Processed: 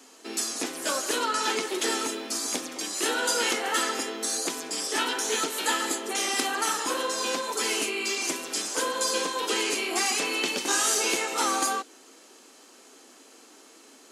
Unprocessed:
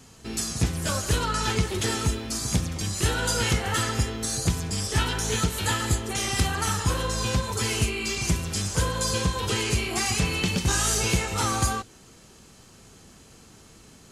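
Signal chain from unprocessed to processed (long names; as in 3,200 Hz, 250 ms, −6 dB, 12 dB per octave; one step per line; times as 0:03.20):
elliptic high-pass filter 270 Hz, stop band 60 dB
level +1.5 dB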